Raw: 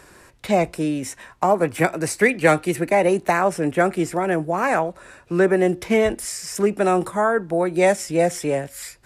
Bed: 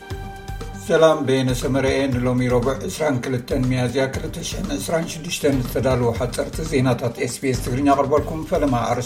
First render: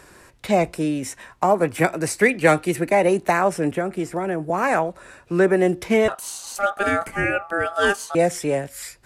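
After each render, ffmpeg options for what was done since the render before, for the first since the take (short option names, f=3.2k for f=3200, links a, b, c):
-filter_complex "[0:a]asettb=1/sr,asplit=3[a][b][c];[a]atrim=end=3.714[d];[b]atrim=start=3.71:end=4.5,asetpts=PTS-STARTPTS,afade=t=in:d=0.004:c=qsin,afade=t=out:st=0.786:d=0.004:c=qsin,acrossover=split=460|1600[e][f][g];[e]acompressor=threshold=-24dB:ratio=4[h];[f]acompressor=threshold=-28dB:ratio=4[i];[g]acompressor=threshold=-40dB:ratio=4[j];[h][i][j]amix=inputs=3:normalize=0[k];[c]atrim=start=4.496[l];[d][k]acrossfade=d=0.004:c1=hsin:c2=qsin[m];[m][l]acrossfade=d=0.004:c1=qsin:c2=hsin,asettb=1/sr,asplit=3[n][o][p];[n]atrim=end=6.084[q];[o]atrim=start=6.08:end=8.15,asetpts=PTS-STARTPTS,afade=t=in:d=0.004:c=qsin,afade=t=out:st=2.066:d=0.004:c=qsin,aeval=exprs='val(0)*sin(2*PI*1000*n/s)':c=same[r];[p]atrim=start=8.146[s];[q][r]acrossfade=d=0.004:c1=hsin:c2=qsin[t];[t][s]acrossfade=d=0.004:c1=qsin:c2=hsin"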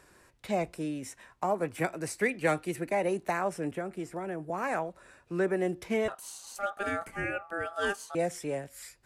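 -af "volume=-11.5dB"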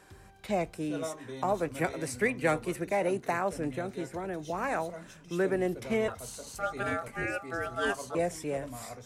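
-filter_complex "[1:a]volume=-23.5dB[a];[0:a][a]amix=inputs=2:normalize=0"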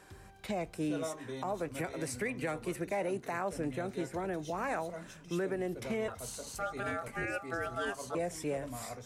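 -af "alimiter=level_in=1.5dB:limit=-24dB:level=0:latency=1:release=171,volume=-1.5dB"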